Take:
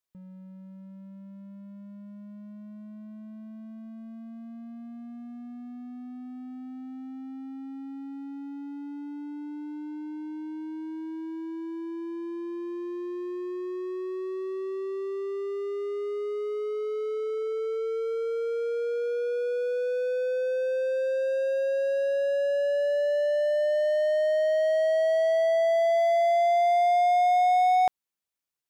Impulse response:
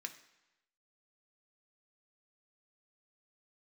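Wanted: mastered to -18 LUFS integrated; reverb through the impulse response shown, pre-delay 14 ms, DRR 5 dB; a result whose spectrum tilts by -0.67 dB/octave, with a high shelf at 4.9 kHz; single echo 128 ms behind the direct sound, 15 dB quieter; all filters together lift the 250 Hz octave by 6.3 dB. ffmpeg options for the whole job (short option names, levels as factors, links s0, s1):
-filter_complex "[0:a]equalizer=f=250:t=o:g=8.5,highshelf=f=4900:g=-4,aecho=1:1:128:0.178,asplit=2[s0][s1];[1:a]atrim=start_sample=2205,adelay=14[s2];[s1][s2]afir=irnorm=-1:irlink=0,volume=0.75[s3];[s0][s3]amix=inputs=2:normalize=0,volume=2.51"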